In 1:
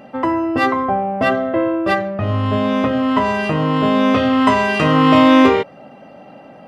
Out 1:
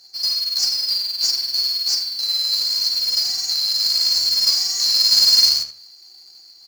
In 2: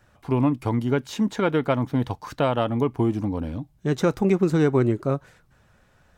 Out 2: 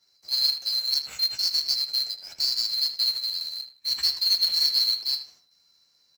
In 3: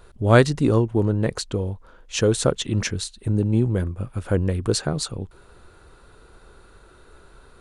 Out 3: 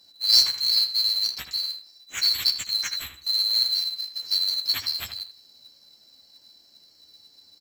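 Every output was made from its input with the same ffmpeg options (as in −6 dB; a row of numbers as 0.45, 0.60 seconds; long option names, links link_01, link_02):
-filter_complex "[0:a]afftfilt=real='real(if(lt(b,736),b+184*(1-2*mod(floor(b/184),2)),b),0)':imag='imag(if(lt(b,736),b+184*(1-2*mod(floor(b/184),2)),b),0)':win_size=2048:overlap=0.75,highpass=frequency=84:poles=1,highshelf=frequency=2300:gain=-7.5,acrossover=split=120|1200[link_01][link_02][link_03];[link_02]acompressor=threshold=-57dB:ratio=6[link_04];[link_01][link_04][link_03]amix=inputs=3:normalize=0,flanger=delay=9.8:depth=5.8:regen=21:speed=0.39:shape=triangular,acrusher=bits=3:mode=log:mix=0:aa=0.000001,asplit=2[link_05][link_06];[link_06]adelay=78,lowpass=frequency=3200:poles=1,volume=-8dB,asplit=2[link_07][link_08];[link_08]adelay=78,lowpass=frequency=3200:poles=1,volume=0.29,asplit=2[link_09][link_10];[link_10]adelay=78,lowpass=frequency=3200:poles=1,volume=0.29[link_11];[link_05][link_07][link_09][link_11]amix=inputs=4:normalize=0,adynamicequalizer=threshold=0.01:dfrequency=1600:dqfactor=0.7:tfrequency=1600:tqfactor=0.7:attack=5:release=100:ratio=0.375:range=1.5:mode=boostabove:tftype=highshelf,volume=2.5dB"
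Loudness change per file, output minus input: −0.5, +0.5, +0.5 LU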